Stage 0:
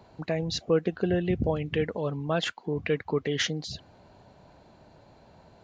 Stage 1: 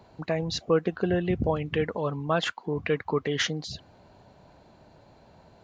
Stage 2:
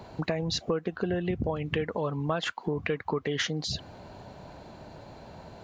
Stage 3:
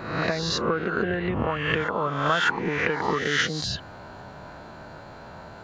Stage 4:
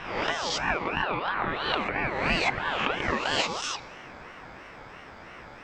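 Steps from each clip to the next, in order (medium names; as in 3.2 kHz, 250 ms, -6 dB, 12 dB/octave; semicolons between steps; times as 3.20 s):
dynamic bell 1.1 kHz, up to +7 dB, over -48 dBFS, Q 1.6
compression 5:1, threshold -36 dBFS, peak gain reduction 16.5 dB; trim +8.5 dB
reverse spectral sustain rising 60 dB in 0.80 s; peaking EQ 1.4 kHz +11 dB 0.82 oct; reverse echo 601 ms -17.5 dB
reverberation RT60 3.1 s, pre-delay 3 ms, DRR 15 dB; ring modulator with a swept carrier 1 kHz, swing 35%, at 3 Hz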